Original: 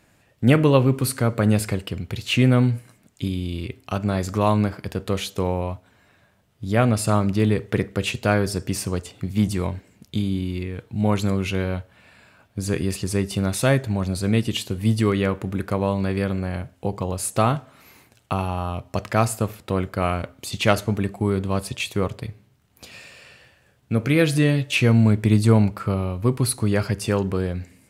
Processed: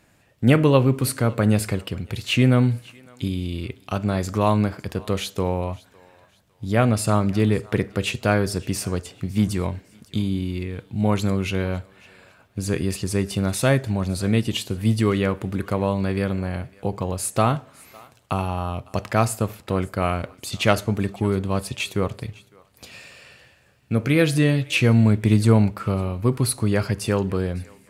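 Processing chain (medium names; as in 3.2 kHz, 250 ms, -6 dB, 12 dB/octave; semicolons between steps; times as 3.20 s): thinning echo 556 ms, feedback 34%, high-pass 780 Hz, level -22 dB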